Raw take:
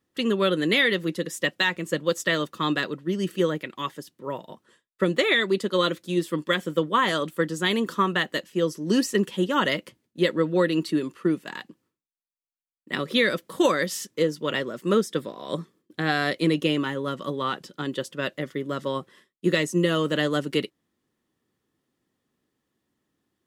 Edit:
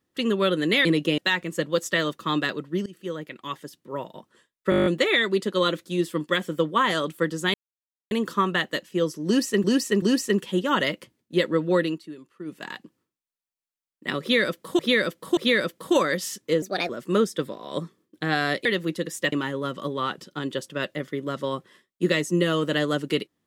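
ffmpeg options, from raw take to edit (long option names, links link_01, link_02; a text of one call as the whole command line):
ffmpeg -i in.wav -filter_complex "[0:a]asplit=23[link_01][link_02][link_03][link_04][link_05][link_06][link_07][link_08][link_09][link_10][link_11][link_12][link_13][link_14][link_15][link_16][link_17][link_18][link_19][link_20][link_21][link_22][link_23];[link_01]atrim=end=0.852[link_24];[link_02]atrim=start=16.418:end=16.752[link_25];[link_03]atrim=start=1.518:end=3.2,asetpts=PTS-STARTPTS,afade=type=out:start_time=1.678:duration=0.004:curve=hsin:silence=0.0841395[link_26];[link_04]atrim=start=3.2:end=5.062,asetpts=PTS-STARTPTS,afade=type=in:duration=1.22:curve=qsin:silence=0.0841395[link_27];[link_05]atrim=start=5.038:end=5.062[link_28];[link_06]atrim=start=5.038:end=5.062[link_29];[link_07]atrim=start=5.038:end=5.062[link_30];[link_08]atrim=start=5.038:end=5.062[link_31];[link_09]atrim=start=5.038:end=5.062[link_32];[link_10]atrim=start=5.038:end=5.062[link_33];[link_11]atrim=start=5.038:end=5.062[link_34];[link_12]atrim=start=5.038:end=7.72,asetpts=PTS-STARTPTS,afade=type=out:start_time=2.678:duration=0.004:curve=hsin,apad=pad_dur=0.57[link_35];[link_13]atrim=start=7.72:end=9.252,asetpts=PTS-STARTPTS,afade=type=in:duration=0.004:curve=hsin[link_36];[link_14]atrim=start=8.868:end=9.252[link_37];[link_15]atrim=start=8.868:end=10.84,asetpts=PTS-STARTPTS,afade=type=out:start_time=1.832:duration=0.14:silence=0.177828[link_38];[link_16]atrim=start=10.84:end=11.3,asetpts=PTS-STARTPTS,volume=-15dB[link_39];[link_17]atrim=start=11.3:end=13.642,asetpts=PTS-STARTPTS,afade=type=in:duration=0.14:silence=0.177828[link_40];[link_18]atrim=start=13.058:end=13.642[link_41];[link_19]atrim=start=13.058:end=14.314[link_42];[link_20]atrim=start=14.31:end=14.66,asetpts=PTS-STARTPTS,asetrate=56448,aresample=44100[link_43];[link_21]atrim=start=14.656:end=16.422[link_44];[link_22]atrim=start=0.848:end=1.522[link_45];[link_23]atrim=start=16.748[link_46];[link_24][link_25]acrossfade=duration=0.004:curve1=hsin:curve2=hsin[link_47];[link_26][link_27]concat=n=2:v=0:a=1[link_48];[link_47][link_48]acrossfade=duration=0.004:curve1=hsin:curve2=hsin[link_49];[link_49][link_28]acrossfade=duration=0.004:curve1=hsin:curve2=hsin[link_50];[link_50][link_29]acrossfade=duration=0.004:curve1=hsin:curve2=hsin[link_51];[link_51][link_30]acrossfade=duration=0.004:curve1=hsin:curve2=hsin[link_52];[link_52][link_31]acrossfade=duration=0.004:curve1=hsin:curve2=hsin[link_53];[link_53][link_32]acrossfade=duration=0.004:curve1=hsin:curve2=hsin[link_54];[link_54][link_33]acrossfade=duration=0.004:curve1=hsin:curve2=hsin[link_55];[link_55][link_34]acrossfade=duration=0.004:curve1=hsin:curve2=hsin[link_56];[link_35][link_36]concat=n=2:v=0:a=1[link_57];[link_56][link_57]acrossfade=duration=0.004:curve1=hsin:curve2=hsin[link_58];[link_58][link_37]acrossfade=duration=0.004:curve1=hsin:curve2=hsin[link_59];[link_38][link_39][link_40]concat=n=3:v=0:a=1[link_60];[link_59][link_60]acrossfade=duration=0.004:curve1=hsin:curve2=hsin[link_61];[link_61][link_41]acrossfade=duration=0.004:curve1=hsin:curve2=hsin[link_62];[link_62][link_42]acrossfade=duration=0.004:curve1=hsin:curve2=hsin[link_63];[link_63][link_43]acrossfade=duration=0.004:curve1=hsin:curve2=hsin[link_64];[link_64][link_44]acrossfade=duration=0.004:curve1=hsin:curve2=hsin[link_65];[link_65][link_45]acrossfade=duration=0.004:curve1=hsin:curve2=hsin[link_66];[link_66][link_46]acrossfade=duration=0.004:curve1=hsin:curve2=hsin" out.wav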